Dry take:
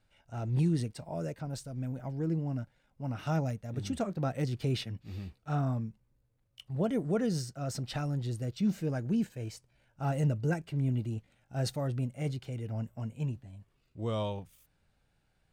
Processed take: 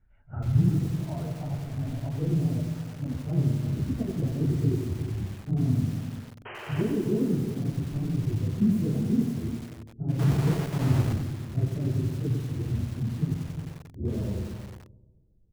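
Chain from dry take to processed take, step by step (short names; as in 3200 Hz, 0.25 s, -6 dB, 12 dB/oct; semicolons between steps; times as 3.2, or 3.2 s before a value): phase scrambler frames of 50 ms; low-pass sweep 1800 Hz -> 370 Hz, 0–3.51; echo 0.349 s -11 dB; 6.45–6.82 painted sound noise 330–3200 Hz -33 dBFS; RIAA curve playback; notch 530 Hz, Q 15; feedback echo 0.135 s, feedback 56%, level -13.5 dB; 10.19–11.13 sample gate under -22 dBFS; lo-fi delay 92 ms, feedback 55%, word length 6-bit, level -5.5 dB; gain -6.5 dB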